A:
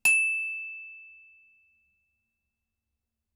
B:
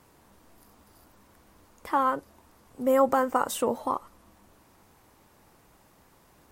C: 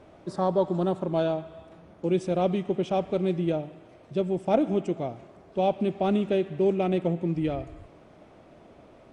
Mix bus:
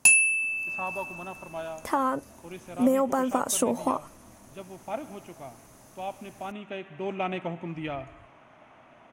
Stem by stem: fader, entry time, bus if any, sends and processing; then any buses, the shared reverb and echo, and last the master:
+1.5 dB, 0.00 s, no send, dry
-5.0 dB, 0.00 s, no send, compressor 5:1, threshold -27 dBFS, peak gain reduction 10 dB
-18.5 dB, 0.40 s, no send, band shelf 1600 Hz +15.5 dB 2.3 oct; auto duck -9 dB, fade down 1.20 s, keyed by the second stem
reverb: off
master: thirty-one-band EQ 125 Hz +8 dB, 250 Hz +8 dB, 630 Hz +6 dB, 6300 Hz +11 dB, 10000 Hz +10 dB; AGC gain up to 8 dB

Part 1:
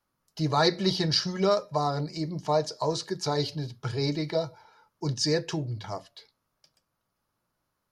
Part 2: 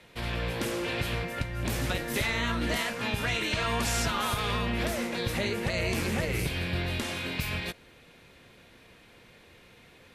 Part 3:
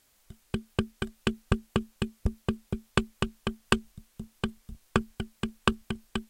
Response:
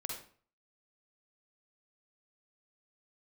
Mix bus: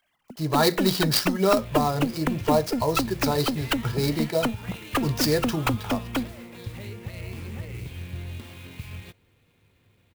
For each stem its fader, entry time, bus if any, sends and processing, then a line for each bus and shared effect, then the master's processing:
-3.5 dB, 0.00 s, no send, dry
-16.0 dB, 1.40 s, no send, fifteen-band EQ 100 Hz +12 dB, 630 Hz -5 dB, 1600 Hz -5 dB, 6300 Hz -10 dB
+3.0 dB, 0.00 s, no send, sine-wave speech; compressor, threshold -28 dBFS, peak gain reduction 8.5 dB; one-sided clip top -36.5 dBFS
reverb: off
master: AGC gain up to 6.5 dB; clock jitter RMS 0.025 ms

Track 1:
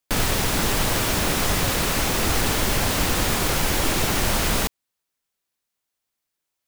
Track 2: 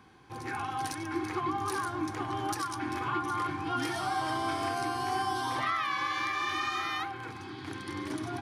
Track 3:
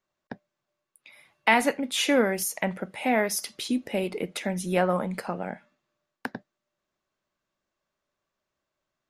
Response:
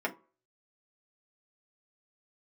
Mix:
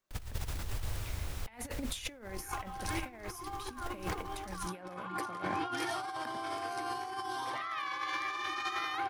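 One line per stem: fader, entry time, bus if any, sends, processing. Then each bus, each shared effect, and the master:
-20.0 dB, 0.00 s, no send, resonant low shelf 130 Hz +13 dB, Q 1.5; auto duck -8 dB, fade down 1.15 s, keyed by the third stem
-1.5 dB, 1.95 s, no send, resonant low shelf 310 Hz -7.5 dB, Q 1.5; limiter -24 dBFS, peak gain reduction 5.5 dB
-8.0 dB, 0.00 s, no send, high shelf 4900 Hz +5.5 dB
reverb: off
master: negative-ratio compressor -37 dBFS, ratio -0.5

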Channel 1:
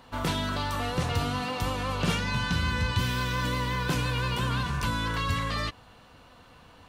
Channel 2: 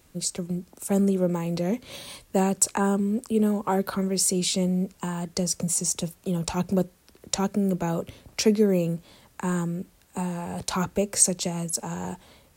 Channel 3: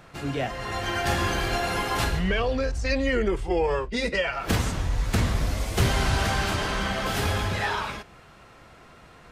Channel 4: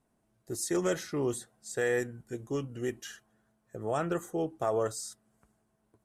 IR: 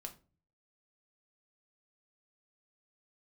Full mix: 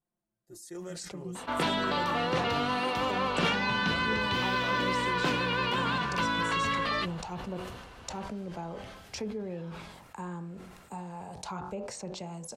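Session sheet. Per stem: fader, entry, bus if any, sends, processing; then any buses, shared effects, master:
+2.5 dB, 1.35 s, no bus, no send, three-band isolator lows -19 dB, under 200 Hz, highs -17 dB, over 4600 Hz
-13.5 dB, 0.75 s, bus A, send -10 dB, treble ducked by the level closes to 2900 Hz, closed at -19.5 dBFS; bell 860 Hz +7.5 dB 0.79 oct
-16.5 dB, 1.90 s, bus A, no send, compressor 2.5:1, threshold -40 dBFS, peak gain reduction 15.5 dB
-17.0 dB, 0.00 s, no bus, no send, comb 5.7 ms, depth 85%
bus A: 0.0 dB, de-hum 46.11 Hz, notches 38; compressor, threshold -36 dBFS, peak gain reduction 8.5 dB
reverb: on, RT60 0.35 s, pre-delay 6 ms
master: sustainer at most 40 dB/s

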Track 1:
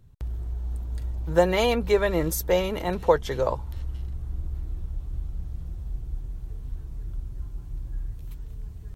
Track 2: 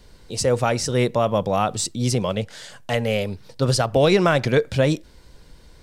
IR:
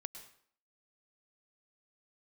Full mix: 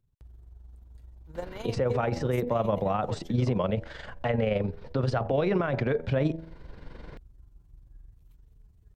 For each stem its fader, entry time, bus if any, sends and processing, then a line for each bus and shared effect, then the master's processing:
-16.0 dB, 0.00 s, no send, dry
+0.5 dB, 1.35 s, no send, LPF 2000 Hz 12 dB/oct; de-hum 81.36 Hz, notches 12; three-band squash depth 40%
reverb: off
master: AM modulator 23 Hz, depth 40%; limiter -16.5 dBFS, peak gain reduction 11 dB

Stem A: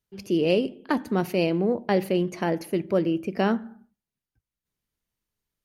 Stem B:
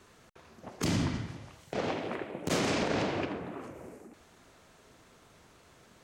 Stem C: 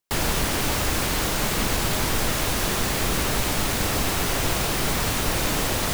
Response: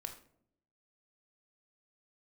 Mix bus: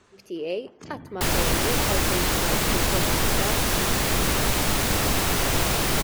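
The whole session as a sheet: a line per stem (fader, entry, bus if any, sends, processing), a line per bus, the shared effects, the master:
-8.0 dB, 0.00 s, no send, resonant low shelf 310 Hz -7.5 dB, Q 1.5
+1.0 dB, 0.00 s, no send, spectral gate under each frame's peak -25 dB strong; compressor 2.5:1, threshold -32 dBFS, peak gain reduction 5 dB; wavefolder -25 dBFS; auto duck -10 dB, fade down 0.70 s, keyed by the first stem
+1.0 dB, 1.10 s, no send, dry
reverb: off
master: dry

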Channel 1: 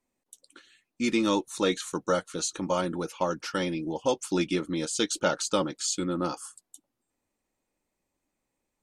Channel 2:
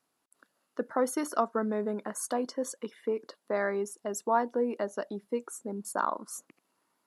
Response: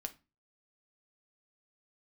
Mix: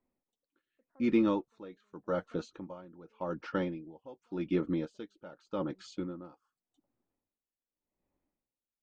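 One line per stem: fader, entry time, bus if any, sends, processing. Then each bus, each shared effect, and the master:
+1.5 dB, 0.00 s, no send, dry
-17.0 dB, 0.00 s, no send, vibrato 0.31 Hz 99 cents; auto duck -11 dB, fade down 1.15 s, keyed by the first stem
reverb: off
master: tape spacing loss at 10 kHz 43 dB; dB-linear tremolo 0.86 Hz, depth 22 dB

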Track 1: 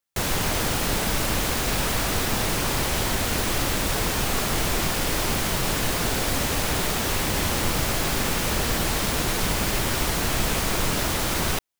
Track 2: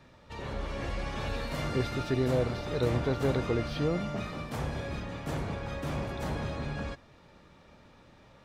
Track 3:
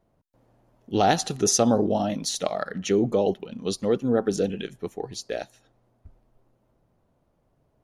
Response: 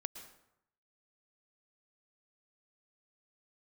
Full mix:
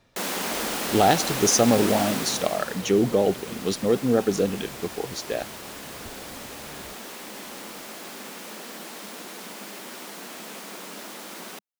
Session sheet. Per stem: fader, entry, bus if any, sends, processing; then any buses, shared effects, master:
2.07 s -2 dB -> 2.84 s -12.5 dB, 0.00 s, no send, Chebyshev high-pass 200 Hz, order 4
-9.0 dB, 0.00 s, no send, high shelf 2800 Hz +11.5 dB; auto duck -7 dB, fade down 0.20 s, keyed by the third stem
+1.5 dB, 0.00 s, no send, dry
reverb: off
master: dry

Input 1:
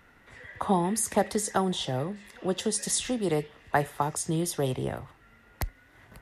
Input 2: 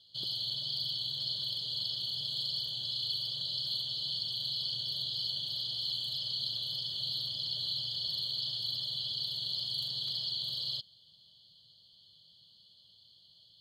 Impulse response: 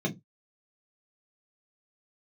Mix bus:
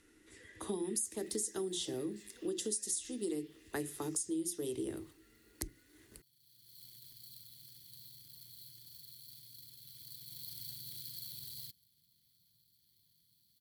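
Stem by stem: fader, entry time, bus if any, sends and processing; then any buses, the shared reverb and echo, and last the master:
+1.0 dB, 0.00 s, send -20 dB, steep low-pass 11000 Hz; resonant low shelf 260 Hz -10.5 dB, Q 3
9.78 s -14 dB -> 10.56 s -6 dB, 0.90 s, no send, median filter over 15 samples; high shelf 7100 Hz +7 dB; auto duck -19 dB, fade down 2.00 s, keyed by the first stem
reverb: on, RT60 0.15 s, pre-delay 3 ms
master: EQ curve 330 Hz 0 dB, 670 Hz -24 dB, 11000 Hz +8 dB; compressor 8:1, threshold -34 dBFS, peak gain reduction 15.5 dB

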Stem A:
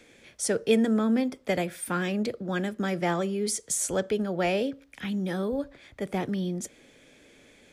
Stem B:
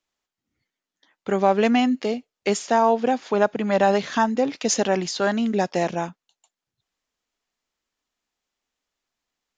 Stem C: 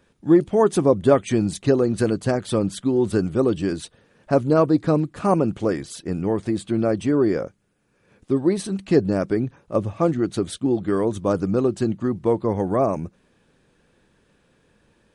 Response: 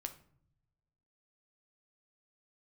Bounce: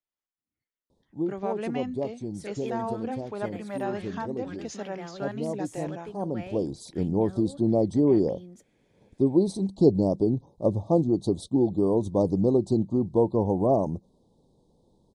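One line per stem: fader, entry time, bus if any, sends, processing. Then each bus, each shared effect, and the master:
-14.5 dB, 1.95 s, no send, dry
-14.0 dB, 0.00 s, no send, dry
-1.0 dB, 0.90 s, no send, elliptic band-stop 920–3900 Hz, stop band 40 dB; auto duck -13 dB, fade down 0.50 s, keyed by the second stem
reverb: off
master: high shelf 4300 Hz -9 dB

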